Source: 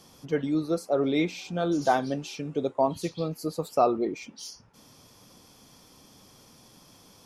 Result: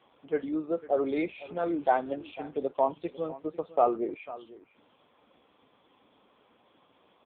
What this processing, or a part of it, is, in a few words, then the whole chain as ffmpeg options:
satellite phone: -af "highpass=340,lowpass=3.3k,aecho=1:1:499:0.133" -ar 8000 -c:a libopencore_amrnb -b:a 5900

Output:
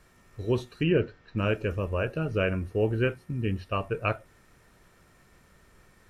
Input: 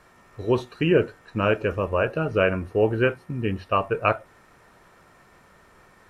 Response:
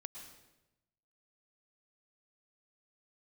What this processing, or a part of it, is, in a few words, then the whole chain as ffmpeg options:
smiley-face EQ: -filter_complex "[0:a]asettb=1/sr,asplit=3[a][b][c];[a]atrim=end=0.834[d];[b]atrim=start=0.83:end=1.38,asetpts=PTS-STARTPTS,afade=t=in:d=0.004:c=qsin,afade=t=out:st=0.546:d=0.004:c=qsin,lowpass=f=5.1k:w=0.5412,lowpass=f=5.1k:w=1.3066[e];[c]atrim=start=1.376[f];[d][e]acrossfade=d=0.004:c1=hsin:c2=qsin[g];[g][f]acrossfade=d=0.004:c1=qsin:c2=hsin,lowshelf=f=98:g=8.5,equalizer=f=920:t=o:w=1.6:g=-6.5,highshelf=f=5.2k:g=4.5,volume=-4dB"

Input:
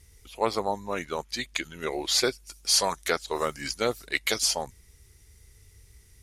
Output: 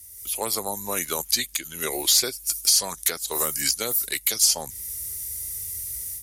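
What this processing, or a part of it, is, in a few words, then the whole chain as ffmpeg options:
FM broadcast chain: -filter_complex "[0:a]highpass=48,dynaudnorm=f=150:g=3:m=12.5dB,acrossover=split=280|7100[a][b][c];[a]acompressor=threshold=-33dB:ratio=4[d];[b]acompressor=threshold=-23dB:ratio=4[e];[c]acompressor=threshold=-41dB:ratio=4[f];[d][e][f]amix=inputs=3:normalize=0,aemphasis=mode=production:type=50fm,alimiter=limit=-8dB:level=0:latency=1:release=304,asoftclip=type=hard:threshold=-11.5dB,lowpass=f=15k:w=0.5412,lowpass=f=15k:w=1.3066,aemphasis=mode=production:type=50fm,volume=-5dB"

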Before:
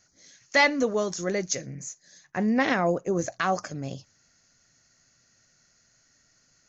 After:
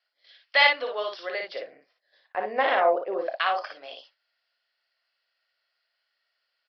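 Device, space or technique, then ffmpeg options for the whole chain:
musical greeting card: -filter_complex "[0:a]aresample=11025,aresample=44100,highpass=f=570:w=0.5412,highpass=f=570:w=1.3066,equalizer=f=3.1k:t=o:w=0.53:g=11,highshelf=f=3.9k:g=-5,agate=range=-11dB:threshold=-56dB:ratio=16:detection=peak,asettb=1/sr,asplit=3[a][b][c];[a]atrim=end=1.424[d];[b]atrim=start=1.42:end=3.33,asetpts=PTS-STARTPTS,afade=t=in:d=0.004:c=qsin,afade=t=out:st=1.906:d=0.004:c=qsin,tiltshelf=f=1.4k:g=9[e];[c]atrim=start=3.326[f];[d][e]acrossfade=d=0.004:c1=hsin:c2=qsin[g];[g][f]acrossfade=d=0.004:c1=qsin:c2=hsin,aecho=1:1:31|57:0.266|0.631"

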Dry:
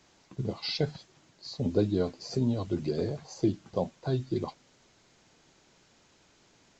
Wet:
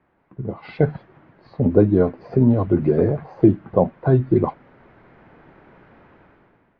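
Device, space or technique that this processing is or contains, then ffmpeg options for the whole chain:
action camera in a waterproof case: -af "lowpass=f=1.9k:w=0.5412,lowpass=f=1.9k:w=1.3066,dynaudnorm=f=150:g=9:m=16dB" -ar 24000 -c:a aac -b:a 48k

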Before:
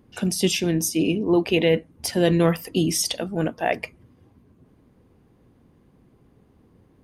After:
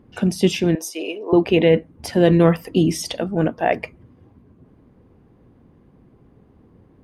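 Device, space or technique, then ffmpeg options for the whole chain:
through cloth: -filter_complex "[0:a]asettb=1/sr,asplit=3[a][b][c];[a]atrim=end=0.754[d];[b]atrim=start=0.75:end=1.33,asetpts=PTS-STARTPTS,afade=t=in:d=0.004:c=qsin,afade=t=out:st=0.576:d=0.004:c=qsin,highpass=f=470:w=0.5412,highpass=f=470:w=1.3066[e];[c]atrim=start=1.326[f];[d][e]acrossfade=d=0.004:c1=hsin:c2=qsin[g];[g][f]acrossfade=d=0.004:c1=qsin:c2=hsin,highshelf=f=3.4k:g=-13,volume=5dB"

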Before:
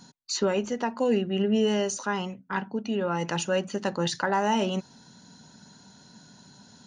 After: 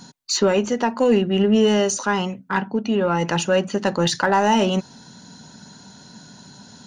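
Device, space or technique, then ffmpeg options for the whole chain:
parallel distortion: -filter_complex "[0:a]asplit=2[a][b];[b]asoftclip=type=hard:threshold=-25.5dB,volume=-10.5dB[c];[a][c]amix=inputs=2:normalize=0,asettb=1/sr,asplit=3[d][e][f];[d]atrim=end=2.584[g];[e]atrim=start=2.58:end=3.87,asetpts=PTS-STARTPTS,afade=t=in:d=0.004:c=qsin,afade=t=out:st=1.286:d=0.004:c=qsin,highshelf=f=5.4k:g=-5[h];[f]atrim=start=3.866[i];[g][h]acrossfade=d=0.004:c1=hsin:c2=qsin[j];[j][i]acrossfade=d=0.004:c1=qsin:c2=hsin,volume=6dB"

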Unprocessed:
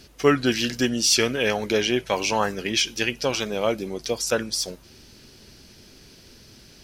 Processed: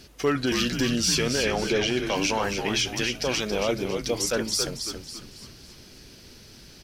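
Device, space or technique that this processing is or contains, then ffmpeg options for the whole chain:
clipper into limiter: -filter_complex "[0:a]asettb=1/sr,asplit=3[a][b][c];[a]atrim=end=1.394[d];[b]atrim=start=1.39:end=1.98,asetpts=PTS-STARTPTS,afade=t=in:d=0.004:c=qsin,afade=t=out:st=0.586:d=0.004:c=qsin,lowpass=7.3k[e];[c]atrim=start=1.976[f];[d][e]acrossfade=d=0.004:c1=hsin:c2=qsin[g];[g][f]acrossfade=d=0.004:c1=qsin:c2=hsin,asoftclip=type=hard:threshold=-9dB,alimiter=limit=-15dB:level=0:latency=1:release=13,asplit=6[h][i][j][k][l][m];[i]adelay=276,afreqshift=-81,volume=-6.5dB[n];[j]adelay=552,afreqshift=-162,volume=-13.6dB[o];[k]adelay=828,afreqshift=-243,volume=-20.8dB[p];[l]adelay=1104,afreqshift=-324,volume=-27.9dB[q];[m]adelay=1380,afreqshift=-405,volume=-35dB[r];[h][n][o][p][q][r]amix=inputs=6:normalize=0"

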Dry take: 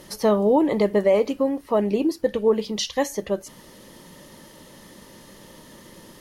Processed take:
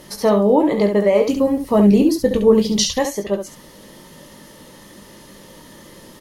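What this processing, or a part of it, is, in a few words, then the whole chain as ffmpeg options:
slapback doubling: -filter_complex "[0:a]asettb=1/sr,asplit=3[a][b][c];[a]atrim=end=1.274[d];[b]atrim=start=1.27:end=2.99,asetpts=PTS-STARTPTS,afade=t=in:d=0.004:c=qsin,afade=t=out:st=1.716:d=0.004:c=qsin,bass=f=250:g=13,treble=f=4k:g=8[e];[c]atrim=start=2.986[f];[d][e]acrossfade=d=0.004:c1=hsin:c2=qsin[g];[g][f]acrossfade=d=0.004:c1=qsin:c2=hsin,asplit=3[h][i][j];[i]adelay=20,volume=-8dB[k];[j]adelay=69,volume=-7dB[l];[h][k][l]amix=inputs=3:normalize=0,volume=2.5dB"

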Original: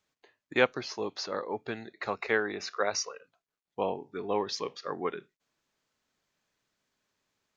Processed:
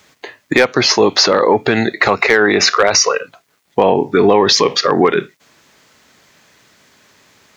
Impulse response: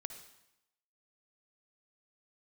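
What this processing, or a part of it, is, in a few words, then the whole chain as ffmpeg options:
mastering chain: -af "highpass=60,equalizer=f=2k:t=o:w=0.3:g=3.5,acompressor=threshold=-31dB:ratio=2.5,asoftclip=type=tanh:threshold=-19dB,asoftclip=type=hard:threshold=-23.5dB,alimiter=level_in=30dB:limit=-1dB:release=50:level=0:latency=1,volume=-1dB"

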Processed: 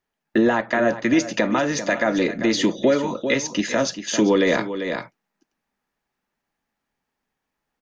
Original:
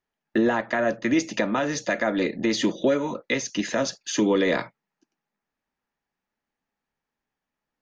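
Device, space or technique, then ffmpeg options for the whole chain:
ducked delay: -filter_complex "[0:a]asplit=3[a][b][c];[b]adelay=394,volume=-3dB[d];[c]apad=whole_len=362103[e];[d][e]sidechaincompress=threshold=-33dB:ratio=3:attack=8.6:release=468[f];[a][f]amix=inputs=2:normalize=0,volume=3.5dB"

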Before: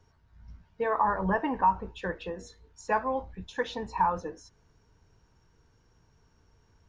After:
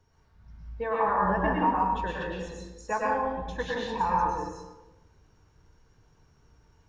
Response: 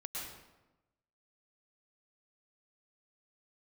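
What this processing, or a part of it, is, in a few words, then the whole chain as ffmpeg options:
bathroom: -filter_complex "[1:a]atrim=start_sample=2205[a];[0:a][a]afir=irnorm=-1:irlink=0,volume=2.5dB"

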